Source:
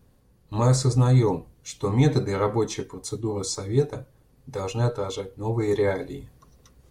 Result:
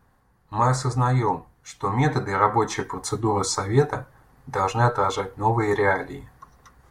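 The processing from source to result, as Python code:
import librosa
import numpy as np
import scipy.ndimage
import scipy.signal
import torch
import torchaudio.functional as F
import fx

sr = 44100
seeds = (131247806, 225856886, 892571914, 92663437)

y = fx.band_shelf(x, sr, hz=1200.0, db=12.5, octaves=1.7)
y = fx.rider(y, sr, range_db=4, speed_s=0.5)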